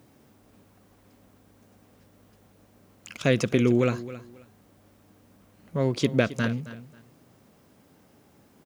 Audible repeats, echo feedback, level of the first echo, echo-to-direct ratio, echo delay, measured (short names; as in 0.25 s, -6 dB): 2, 23%, -15.5 dB, -15.5 dB, 0.269 s